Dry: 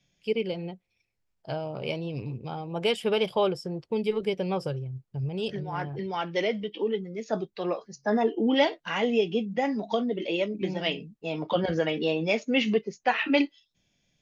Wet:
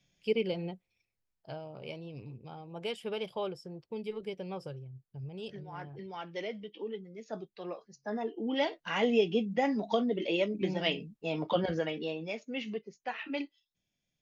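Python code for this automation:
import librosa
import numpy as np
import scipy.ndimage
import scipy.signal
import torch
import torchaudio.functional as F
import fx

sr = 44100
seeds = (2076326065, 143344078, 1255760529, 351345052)

y = fx.gain(x, sr, db=fx.line((0.72, -2.0), (1.68, -11.0), (8.39, -11.0), (9.02, -2.0), (11.46, -2.0), (12.37, -13.0)))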